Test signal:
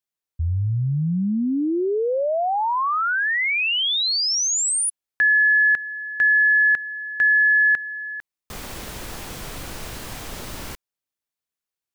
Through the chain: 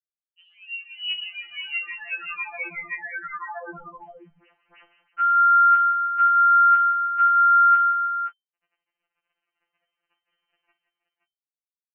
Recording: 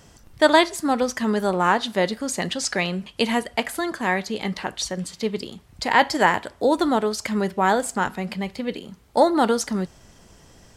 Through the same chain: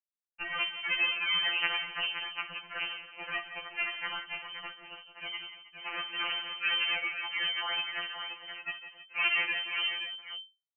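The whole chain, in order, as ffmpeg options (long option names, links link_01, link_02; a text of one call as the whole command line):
ffmpeg -i in.wav -filter_complex "[0:a]asplit=2[link_01][link_02];[link_02]acompressor=threshold=-31dB:ratio=16:attack=0.7:release=273:knee=1:detection=peak,volume=-1.5dB[link_03];[link_01][link_03]amix=inputs=2:normalize=0,alimiter=limit=-13.5dB:level=0:latency=1:release=70,acrusher=bits=2:mix=0:aa=0.5,asplit=2[link_04][link_05];[link_05]adelay=20,volume=-11dB[link_06];[link_04][link_06]amix=inputs=2:normalize=0,aecho=1:1:54|145|151|176|317|524:0.224|0.119|0.106|0.237|0.141|0.398,lowpass=frequency=2600:width_type=q:width=0.5098,lowpass=frequency=2600:width_type=q:width=0.6013,lowpass=frequency=2600:width_type=q:width=0.9,lowpass=frequency=2600:width_type=q:width=2.563,afreqshift=-3100,afftfilt=real='re*2.83*eq(mod(b,8),0)':imag='im*2.83*eq(mod(b,8),0)':win_size=2048:overlap=0.75,volume=-5dB" out.wav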